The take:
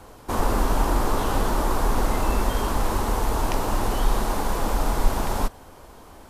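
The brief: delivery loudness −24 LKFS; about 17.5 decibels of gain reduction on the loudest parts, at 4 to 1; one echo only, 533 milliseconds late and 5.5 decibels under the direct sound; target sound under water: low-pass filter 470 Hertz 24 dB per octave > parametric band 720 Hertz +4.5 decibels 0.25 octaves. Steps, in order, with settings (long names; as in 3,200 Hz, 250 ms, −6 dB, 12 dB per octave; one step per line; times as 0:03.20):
downward compressor 4 to 1, threshold −35 dBFS
low-pass filter 470 Hz 24 dB per octave
parametric band 720 Hz +4.5 dB 0.25 octaves
single-tap delay 533 ms −5.5 dB
level +17 dB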